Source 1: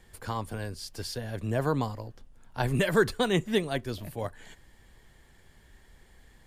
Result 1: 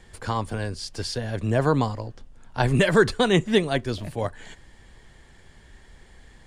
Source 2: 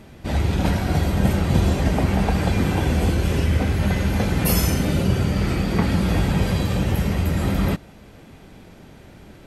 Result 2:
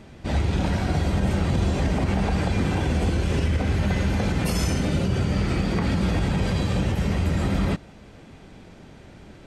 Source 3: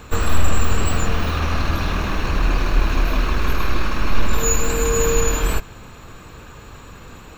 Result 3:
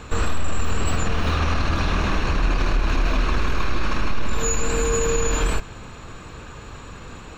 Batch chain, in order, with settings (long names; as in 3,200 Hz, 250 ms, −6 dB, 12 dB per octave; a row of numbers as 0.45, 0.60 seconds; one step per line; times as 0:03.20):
Savitzky-Golay smoothing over 9 samples
boost into a limiter +12 dB
loudness normalisation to −24 LKFS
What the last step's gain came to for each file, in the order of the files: −5.5, −13.0, −10.5 decibels